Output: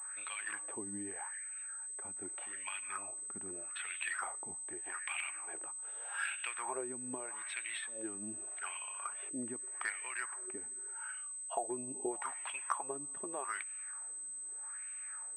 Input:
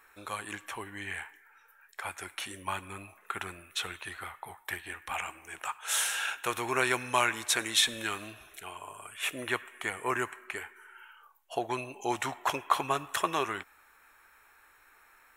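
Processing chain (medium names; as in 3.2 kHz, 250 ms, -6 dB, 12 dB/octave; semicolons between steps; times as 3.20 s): compression 6:1, threshold -39 dBFS, peak gain reduction 18.5 dB; wah-wah 0.82 Hz 220–2700 Hz, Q 2.8; class-D stage that switches slowly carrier 8.2 kHz; trim +9 dB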